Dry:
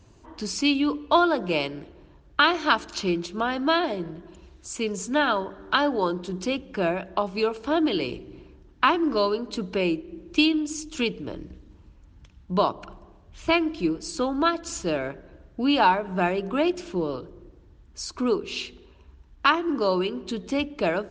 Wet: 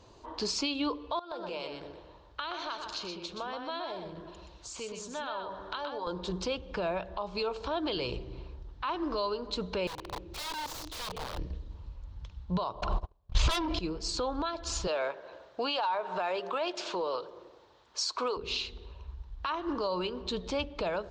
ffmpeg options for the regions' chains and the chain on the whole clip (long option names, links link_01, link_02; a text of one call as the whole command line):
ffmpeg -i in.wav -filter_complex "[0:a]asettb=1/sr,asplit=3[link_01][link_02][link_03];[link_01]atrim=end=1.194[link_04];[link_02]atrim=start=1.19:end=6.07,asetpts=PTS-STARTPTS,afade=type=in:duration=0.004:curve=qsin,afade=type=out:start_time=4.876:duration=0.004:curve=qsin,highpass=frequency=190:poles=1,acompressor=threshold=-38dB:ratio=5:attack=3.2:release=140:knee=1:detection=peak,aecho=1:1:124:0.531,atrim=end_sample=215208[link_05];[link_03]atrim=start=6.066[link_06];[link_04][link_05]acrossfade=duration=0.004:curve1=hsin:curve2=qsin[link_07];[link_07][link_06]acrossfade=duration=0.004:curve1=qsin:curve2=hsin,asettb=1/sr,asplit=3[link_08][link_09][link_10];[link_08]atrim=end=9.874[link_11];[link_09]atrim=start=9.87:end=11.38,asetpts=PTS-STARTPTS,afade=type=in:duration=0.004:curve=qsin,afade=type=out:start_time=1.506:duration=0.004:curve=qsin,highpass=60,acompressor=threshold=-34dB:ratio=6:attack=3.2:release=140:knee=1:detection=peak,aeval=exprs='(mod(56.2*val(0)+1,2)-1)/56.2':channel_layout=same[link_12];[link_10]atrim=start=11.376[link_13];[link_11][link_12]acrossfade=duration=0.004:curve1=hsin:curve2=qsin[link_14];[link_14][link_13]acrossfade=duration=0.004:curve1=qsin:curve2=hsin,asettb=1/sr,asplit=3[link_15][link_16][link_17];[link_15]atrim=end=12.814[link_18];[link_16]atrim=start=12.81:end=13.79,asetpts=PTS-STARTPTS,afade=type=in:duration=0.004:curve=qsin,afade=type=out:start_time=0.976:duration=0.004:curve=qsin,agate=range=-41dB:threshold=-46dB:ratio=16:release=100:detection=peak,aeval=exprs='0.355*sin(PI/2*4.47*val(0)/0.355)':channel_layout=same[link_19];[link_17]atrim=start=13.786[link_20];[link_18][link_19]acrossfade=duration=0.004:curve1=hsin:curve2=qsin[link_21];[link_21][link_20]acrossfade=duration=0.004:curve1=qsin:curve2=hsin,asettb=1/sr,asplit=3[link_22][link_23][link_24];[link_22]atrim=end=14.874[link_25];[link_23]atrim=start=14.87:end=18.37,asetpts=PTS-STARTPTS,afade=type=in:duration=0.004:curve=qsin,afade=type=out:start_time=3.496:duration=0.004:curve=qsin,acontrast=53,highpass=510[link_26];[link_24]atrim=start=18.366[link_27];[link_25][link_26]acrossfade=duration=0.004:curve1=hsin:curve2=qsin[link_28];[link_28][link_27]acrossfade=duration=0.004:curve1=qsin:curve2=hsin,equalizer=frequency=500:width_type=o:width=1:gain=10,equalizer=frequency=1000:width_type=o:width=1:gain=10,equalizer=frequency=4000:width_type=o:width=1:gain=12,alimiter=limit=-16dB:level=0:latency=1:release=217,asubboost=boost=6.5:cutoff=110,volume=-6.5dB" out.wav